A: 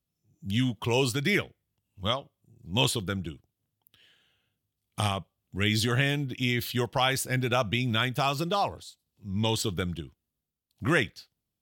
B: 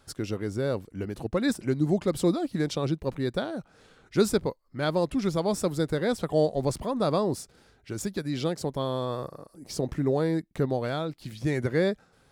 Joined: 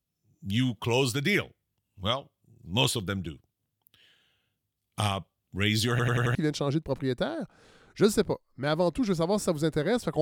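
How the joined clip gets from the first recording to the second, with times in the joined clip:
A
5.90 s: stutter in place 0.09 s, 5 plays
6.35 s: go over to B from 2.51 s

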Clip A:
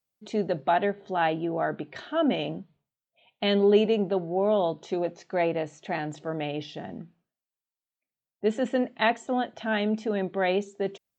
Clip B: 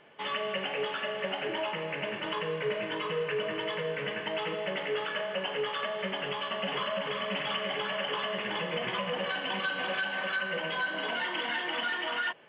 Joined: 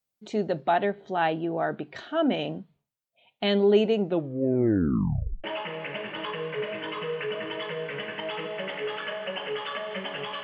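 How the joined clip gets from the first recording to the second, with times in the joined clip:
clip A
4.01 s: tape stop 1.43 s
5.44 s: go over to clip B from 1.52 s

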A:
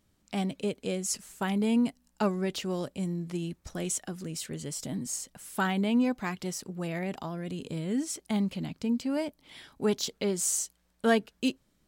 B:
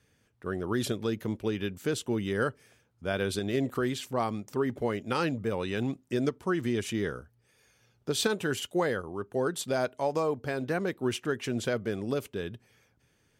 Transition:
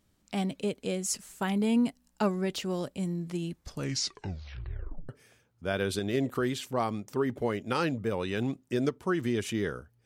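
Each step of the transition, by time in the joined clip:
A
3.52 s: tape stop 1.57 s
5.09 s: go over to B from 2.49 s

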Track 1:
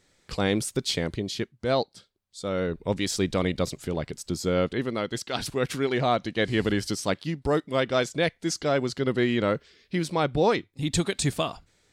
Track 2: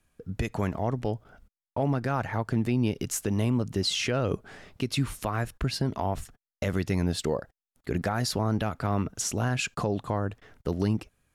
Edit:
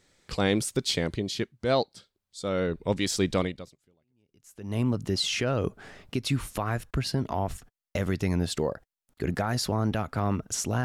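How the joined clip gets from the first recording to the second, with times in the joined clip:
track 1
4.10 s: go over to track 2 from 2.77 s, crossfade 1.40 s exponential

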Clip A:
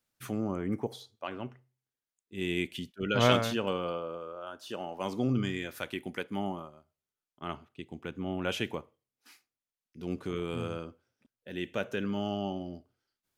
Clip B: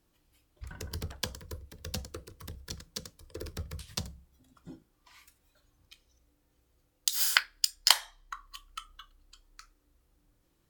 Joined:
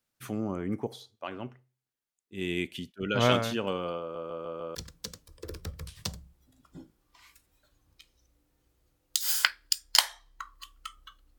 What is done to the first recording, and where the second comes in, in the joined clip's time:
clip A
4.00 s: stutter in place 0.15 s, 5 plays
4.75 s: go over to clip B from 2.67 s

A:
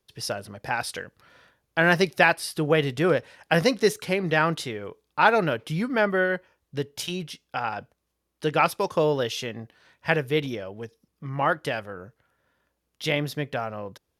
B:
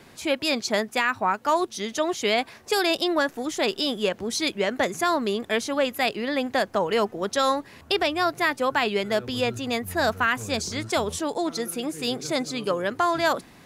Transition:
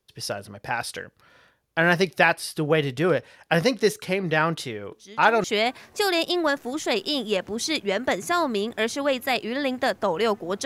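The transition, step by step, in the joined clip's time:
A
4.92 s: add B from 1.64 s 0.52 s -14 dB
5.44 s: go over to B from 2.16 s

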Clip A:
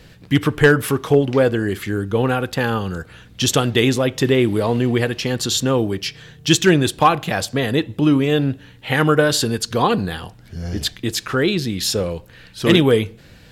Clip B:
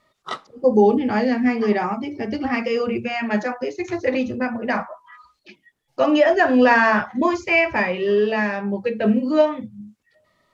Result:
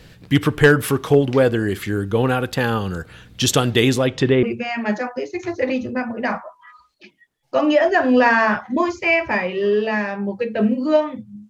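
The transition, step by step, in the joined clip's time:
clip A
3.99–4.43 s: low-pass 11 kHz -> 1.8 kHz
4.43 s: go over to clip B from 2.88 s

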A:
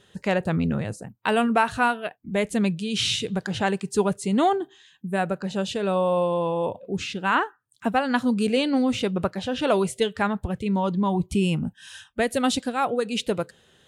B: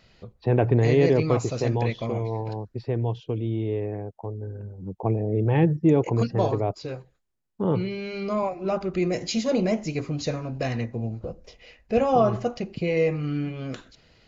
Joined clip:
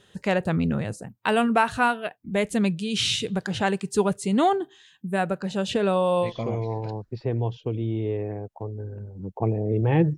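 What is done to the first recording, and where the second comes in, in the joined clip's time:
A
5.69–6.33 s: three bands compressed up and down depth 70%
6.27 s: go over to B from 1.90 s, crossfade 0.12 s

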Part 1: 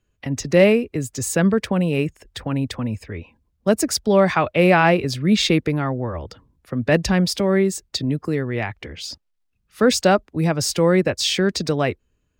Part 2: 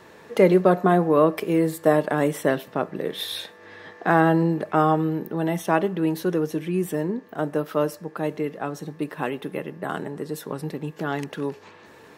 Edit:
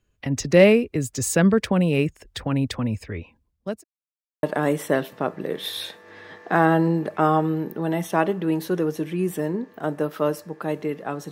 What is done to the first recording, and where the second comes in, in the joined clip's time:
part 1
2.99–3.84 s: fade out equal-power
3.84–4.43 s: mute
4.43 s: go over to part 2 from 1.98 s

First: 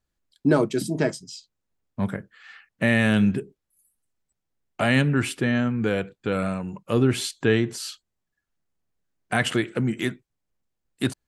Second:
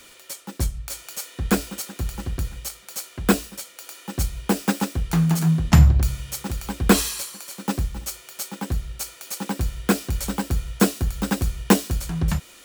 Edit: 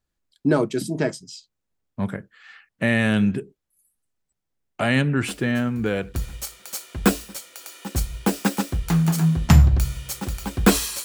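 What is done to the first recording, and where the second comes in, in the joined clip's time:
first
5.27 s: add second from 1.50 s 0.87 s -17.5 dB
6.14 s: go over to second from 2.37 s

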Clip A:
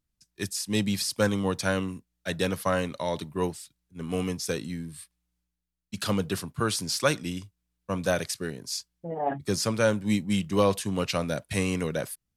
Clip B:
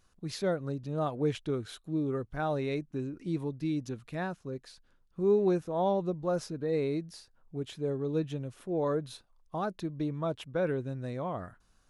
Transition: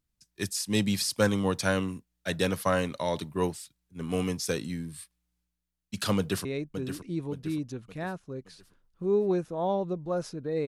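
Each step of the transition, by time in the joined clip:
clip A
6.17–6.45 s: echo throw 570 ms, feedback 45%, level -8.5 dB
6.45 s: go over to clip B from 2.62 s

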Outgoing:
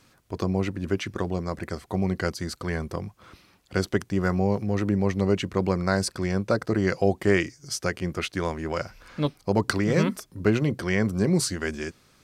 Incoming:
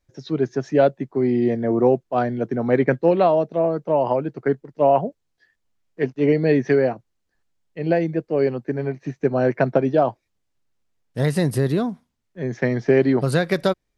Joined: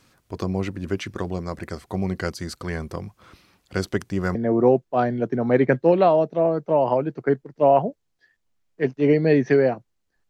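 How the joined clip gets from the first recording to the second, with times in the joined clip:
outgoing
4.35 s: go over to incoming from 1.54 s

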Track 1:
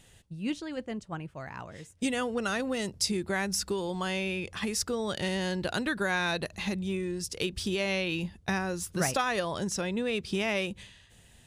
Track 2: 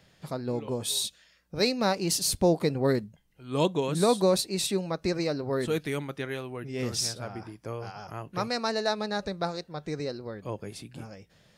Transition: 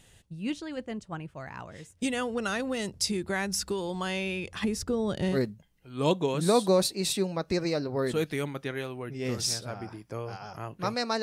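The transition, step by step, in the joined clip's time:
track 1
4.64–5.39 s: tilt shelf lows +6.5 dB, about 700 Hz
5.35 s: go over to track 2 from 2.89 s, crossfade 0.08 s

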